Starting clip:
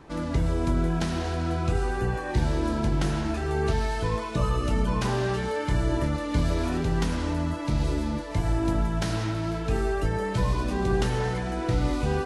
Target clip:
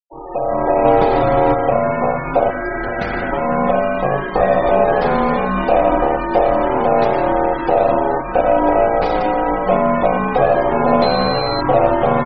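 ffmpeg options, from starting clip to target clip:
-filter_complex "[0:a]asplit=3[a][b][c];[a]afade=t=out:st=2.49:d=0.02[d];[b]lowshelf=f=580:t=q:w=3:g=-12,afade=t=in:st=2.49:d=0.02,afade=t=out:st=3.31:d=0.02[e];[c]afade=t=in:st=3.31:d=0.02[f];[d][e][f]amix=inputs=3:normalize=0,aeval=exprs='val(0)*sin(2*PI*630*n/s)':c=same,asplit=2[g][h];[h]aecho=0:1:863:0.168[i];[g][i]amix=inputs=2:normalize=0,asplit=3[j][k][l];[j]afade=t=out:st=0.84:d=0.02[m];[k]acontrast=44,afade=t=in:st=0.84:d=0.02,afade=t=out:st=1.52:d=0.02[n];[l]afade=t=in:st=1.52:d=0.02[o];[m][n][o]amix=inputs=3:normalize=0,lowpass=f=5.7k:w=0.5412,lowpass=f=5.7k:w=1.3066,acrossover=split=930[p][q];[q]asoftclip=type=hard:threshold=-38dB[r];[p][r]amix=inputs=2:normalize=0,aeval=exprs='0.2*(cos(1*acos(clip(val(0)/0.2,-1,1)))-cos(1*PI/2))+0.00891*(cos(8*acos(clip(val(0)/0.2,-1,1)))-cos(8*PI/2))':c=same,dynaudnorm=f=100:g=9:m=16dB,asettb=1/sr,asplit=3[s][t][u];[s]atrim=end=11.024[v];[t]atrim=start=11.02:end=11.61,asetpts=PTS-STARTPTS,afade=t=in:d=0.004:c=qsin,afade=t=out:st=0.586:d=0.004:c=qsin,aeval=exprs='val(0)+0.0562*sin(2*PI*4100*n/s)':c=same[w];[u]atrim=start=11.606[x];[v][w]acrossfade=d=0.004:c1=hsin:c2=qsin[y];[y][x]acrossfade=d=0.004:c1=qsin:c2=hsin,afftfilt=real='re*gte(hypot(re,im),0.0562)':imag='im*gte(hypot(re,im),0.0562)':win_size=1024:overlap=0.75"

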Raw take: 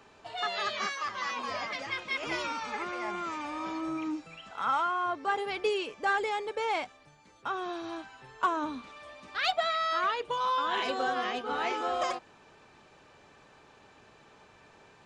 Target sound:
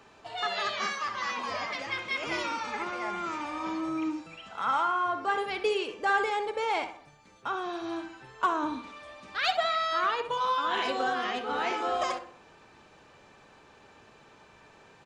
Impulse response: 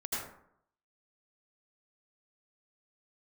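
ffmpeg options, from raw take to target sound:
-filter_complex "[0:a]asplit=2[a][b];[b]adelay=63,lowpass=f=2.3k:p=1,volume=-11dB,asplit=2[c][d];[d]adelay=63,lowpass=f=2.3k:p=1,volume=0.51,asplit=2[e][f];[f]adelay=63,lowpass=f=2.3k:p=1,volume=0.51,asplit=2[g][h];[h]adelay=63,lowpass=f=2.3k:p=1,volume=0.51,asplit=2[i][j];[j]adelay=63,lowpass=f=2.3k:p=1,volume=0.51[k];[a][c][e][g][i][k]amix=inputs=6:normalize=0,asplit=2[l][m];[1:a]atrim=start_sample=2205,afade=t=out:st=0.16:d=0.01,atrim=end_sample=7497,asetrate=61740,aresample=44100[n];[m][n]afir=irnorm=-1:irlink=0,volume=-10.5dB[o];[l][o]amix=inputs=2:normalize=0"

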